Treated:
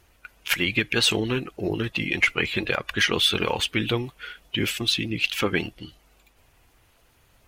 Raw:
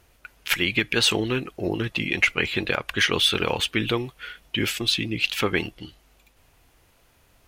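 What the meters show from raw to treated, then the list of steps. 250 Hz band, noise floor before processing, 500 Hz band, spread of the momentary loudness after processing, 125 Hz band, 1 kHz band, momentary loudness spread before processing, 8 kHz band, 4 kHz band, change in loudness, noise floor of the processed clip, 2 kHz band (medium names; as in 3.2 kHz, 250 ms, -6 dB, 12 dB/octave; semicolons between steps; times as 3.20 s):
0.0 dB, -61 dBFS, -0.5 dB, 9 LU, +0.5 dB, -0.5 dB, 9 LU, -0.5 dB, -0.5 dB, -0.5 dB, -61 dBFS, -0.5 dB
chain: coarse spectral quantiser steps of 15 dB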